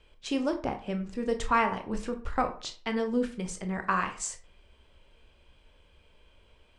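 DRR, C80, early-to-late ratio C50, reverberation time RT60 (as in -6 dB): 6.0 dB, 17.0 dB, 11.5 dB, 0.40 s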